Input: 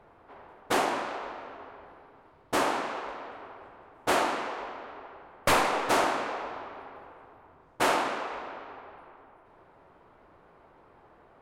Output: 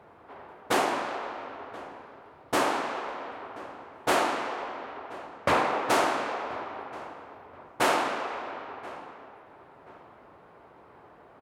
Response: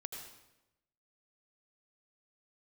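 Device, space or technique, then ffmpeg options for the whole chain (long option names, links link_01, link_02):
compressed reverb return: -filter_complex "[0:a]asplit=2[link_01][link_02];[1:a]atrim=start_sample=2205[link_03];[link_02][link_03]afir=irnorm=-1:irlink=0,acompressor=threshold=-39dB:ratio=6,volume=-2dB[link_04];[link_01][link_04]amix=inputs=2:normalize=0,asettb=1/sr,asplit=3[link_05][link_06][link_07];[link_05]atrim=end=5.274[link_08];[link_06]atrim=start=5.27:end=5.9,asetpts=PTS-STARTPTS,afade=type=in:duration=0.004:curve=qsin,afade=type=out:start_time=0.626:duration=0.004:curve=qsin,aemphasis=mode=reproduction:type=75kf[link_09];[link_07]atrim=start=5.896[link_10];[link_08][link_09]acrossfade=duration=0.004:curve1=hsin:curve2=qsin[link_11];[link_11][link_10]acrossfade=duration=0.004:curve1=qsin:curve2=hsin,highpass=77,asplit=2[link_12][link_13];[link_13]adelay=1030,lowpass=frequency=2200:poles=1,volume=-18dB,asplit=2[link_14][link_15];[link_15]adelay=1030,lowpass=frequency=2200:poles=1,volume=0.35,asplit=2[link_16][link_17];[link_17]adelay=1030,lowpass=frequency=2200:poles=1,volume=0.35[link_18];[link_12][link_14][link_16][link_18]amix=inputs=4:normalize=0"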